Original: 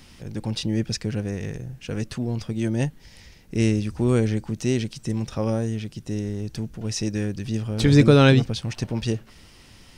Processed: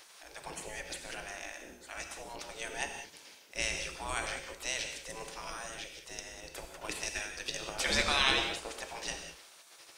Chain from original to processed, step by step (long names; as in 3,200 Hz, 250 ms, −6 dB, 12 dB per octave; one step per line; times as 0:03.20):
gate on every frequency bin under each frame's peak −20 dB weak
0:06.13–0:07.71: transient designer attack +9 dB, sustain −5 dB
reverb whose tail is shaped and stops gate 220 ms flat, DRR 4 dB